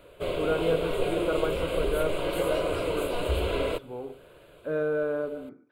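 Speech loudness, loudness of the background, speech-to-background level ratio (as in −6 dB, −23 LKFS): −32.5 LKFS, −29.5 LKFS, −3.0 dB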